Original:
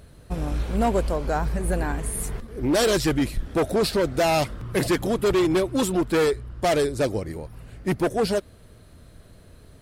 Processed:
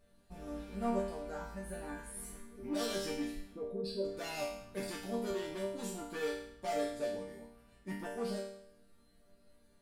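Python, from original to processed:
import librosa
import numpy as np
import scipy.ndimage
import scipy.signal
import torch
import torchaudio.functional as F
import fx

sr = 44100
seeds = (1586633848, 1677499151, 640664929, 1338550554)

y = fx.spec_expand(x, sr, power=2.0, at=(3.53, 4.04), fade=0.02)
y = fx.resonator_bank(y, sr, root=55, chord='minor', decay_s=0.68)
y = F.gain(torch.from_numpy(y), 5.0).numpy()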